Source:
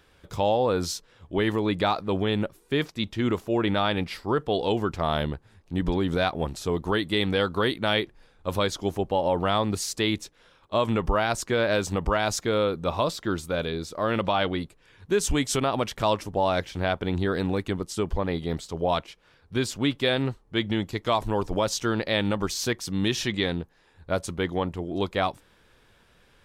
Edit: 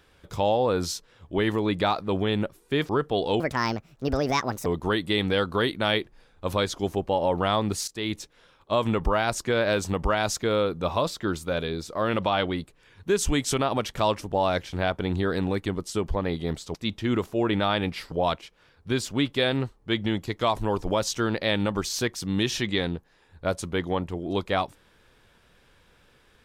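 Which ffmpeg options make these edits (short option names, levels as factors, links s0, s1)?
-filter_complex "[0:a]asplit=7[s0][s1][s2][s3][s4][s5][s6];[s0]atrim=end=2.892[s7];[s1]atrim=start=4.258:end=4.774[s8];[s2]atrim=start=4.77:end=6.68,asetpts=PTS-STARTPTS,asetrate=67032,aresample=44100,atrim=end_sample=55415,asetpts=PTS-STARTPTS[s9];[s3]atrim=start=6.676:end=9.9,asetpts=PTS-STARTPTS,afade=t=out:st=3.22:d=0.004:c=hsin:silence=0.133352[s10];[s4]atrim=start=9.9:end=18.772,asetpts=PTS-STARTPTS,afade=t=in:d=0.33:silence=0.133352[s11];[s5]atrim=start=2.888:end=4.262[s12];[s6]atrim=start=18.768[s13];[s7][s8]acrossfade=d=0.004:c1=hsin:c2=hsin[s14];[s14][s9]acrossfade=d=0.004:c1=hsin:c2=hsin[s15];[s10][s11]concat=n=2:v=0:a=1[s16];[s15][s16]acrossfade=d=0.004:c1=hsin:c2=hsin[s17];[s17][s12]acrossfade=d=0.004:c1=hsin:c2=hsin[s18];[s18][s13]acrossfade=d=0.004:c1=hsin:c2=hsin"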